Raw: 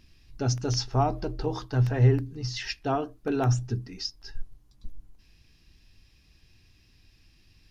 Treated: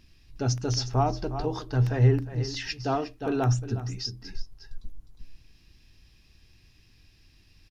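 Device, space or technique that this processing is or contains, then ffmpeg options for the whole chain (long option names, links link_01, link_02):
ducked delay: -filter_complex "[0:a]asplit=3[link_01][link_02][link_03];[link_02]adelay=358,volume=-5dB[link_04];[link_03]apad=whole_len=355380[link_05];[link_04][link_05]sidechaincompress=threshold=-36dB:ratio=5:attack=21:release=249[link_06];[link_01][link_06]amix=inputs=2:normalize=0"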